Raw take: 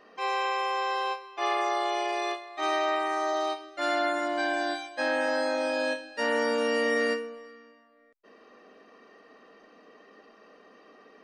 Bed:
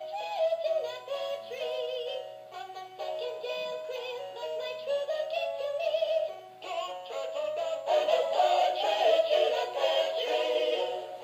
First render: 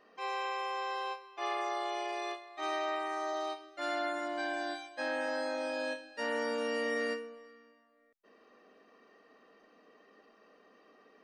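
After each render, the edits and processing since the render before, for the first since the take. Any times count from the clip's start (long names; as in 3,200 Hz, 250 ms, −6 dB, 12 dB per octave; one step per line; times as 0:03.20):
level −7.5 dB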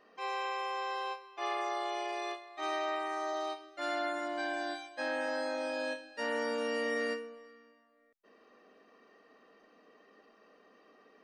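no processing that can be heard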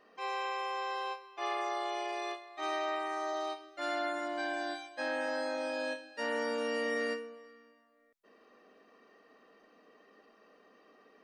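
0:05.57–0:07.44: high-pass filter 85 Hz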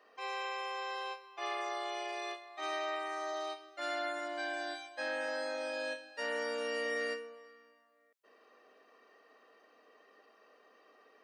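high-pass filter 410 Hz 12 dB per octave
dynamic equaliser 920 Hz, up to −5 dB, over −48 dBFS, Q 1.9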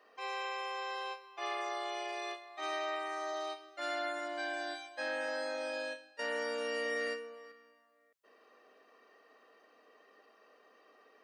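0:05.76–0:06.19: fade out linear, to −10.5 dB
0:07.07–0:07.52: multiband upward and downward compressor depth 40%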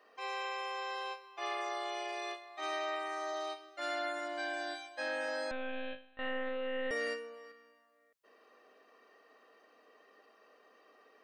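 0:05.51–0:06.91: one-pitch LPC vocoder at 8 kHz 260 Hz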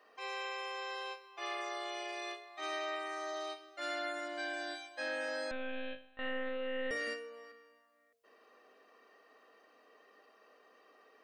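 hum removal 46.32 Hz, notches 15
dynamic equaliser 880 Hz, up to −5 dB, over −55 dBFS, Q 1.9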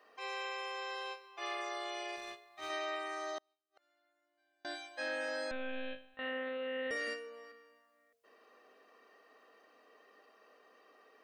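0:02.16–0:02.70: mu-law and A-law mismatch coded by A
0:03.38–0:04.65: gate with flip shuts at −46 dBFS, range −39 dB
0:06.14–0:07.27: high-pass filter 170 Hz 6 dB per octave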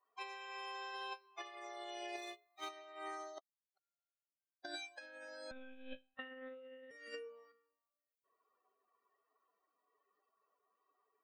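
spectral dynamics exaggerated over time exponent 2
compressor whose output falls as the input rises −47 dBFS, ratio −0.5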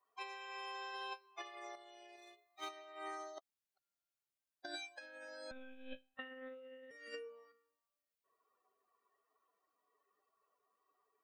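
0:01.75–0:02.50: downward compressor 10 to 1, threshold −55 dBFS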